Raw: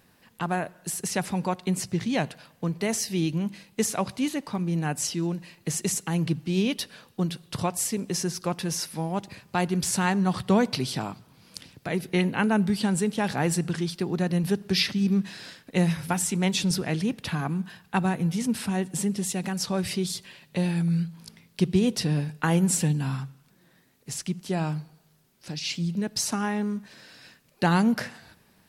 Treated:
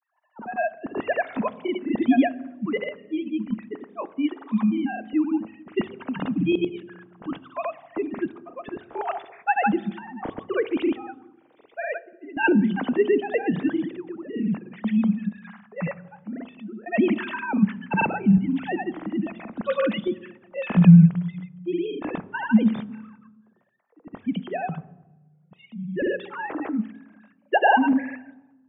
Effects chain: formants replaced by sine waves; random-step tremolo, depth 95%; granulator 100 ms, grains 20 per s, spray 100 ms, pitch spread up and down by 0 st; level-controlled noise filter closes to 890 Hz, open at -27.5 dBFS; on a send: reverberation RT60 1.1 s, pre-delay 3 ms, DRR 16.5 dB; on the sum: trim +8.5 dB

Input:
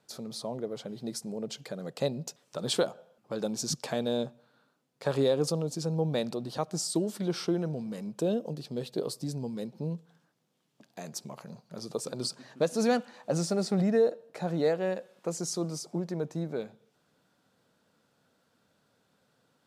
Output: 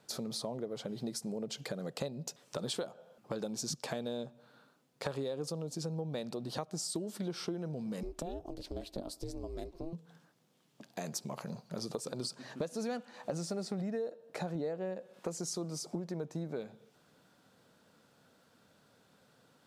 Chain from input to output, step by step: 14.55–15.14 s: tilt shelf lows +4 dB; compression 6:1, threshold -40 dBFS, peak gain reduction 18.5 dB; 8.03–9.93 s: ring modulator 170 Hz; trim +4.5 dB

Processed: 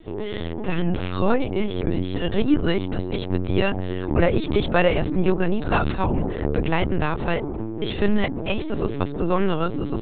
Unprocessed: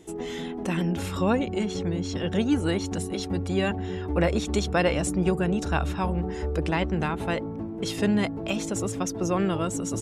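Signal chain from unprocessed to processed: LPC vocoder at 8 kHz pitch kept; trim +5 dB

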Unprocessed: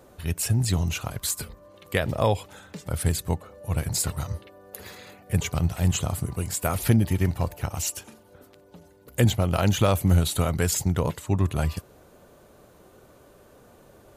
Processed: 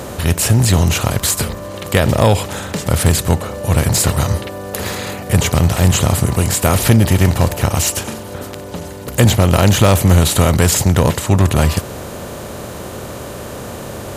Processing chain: spectral levelling over time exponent 0.6; saturation -9 dBFS, distortion -22 dB; trim +8.5 dB

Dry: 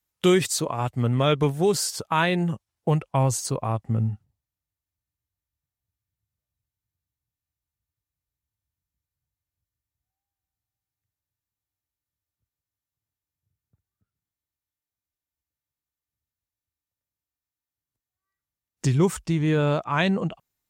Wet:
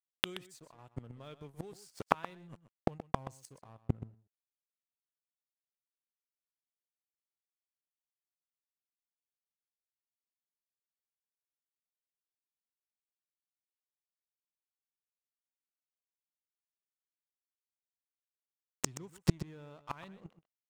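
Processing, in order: crossover distortion -35 dBFS; inverted gate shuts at -20 dBFS, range -37 dB; delay 126 ms -14 dB; trim +9 dB

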